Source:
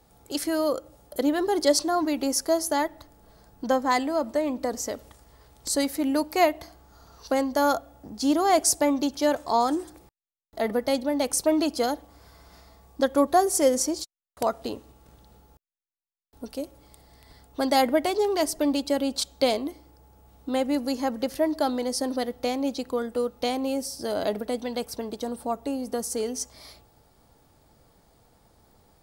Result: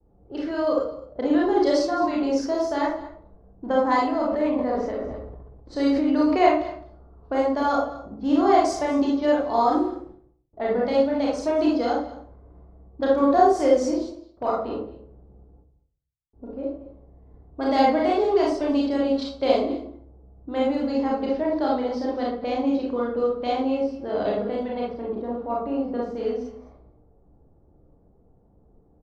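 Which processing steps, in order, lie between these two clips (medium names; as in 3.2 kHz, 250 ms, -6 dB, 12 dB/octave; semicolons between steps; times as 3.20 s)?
gate with hold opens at -55 dBFS; level-controlled noise filter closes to 490 Hz, open at -20 dBFS; distance through air 180 m; delay 213 ms -18 dB; reverberation RT60 0.50 s, pre-delay 29 ms, DRR -4 dB; 4.20–6.49 s: decay stretcher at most 32 dB/s; trim -3 dB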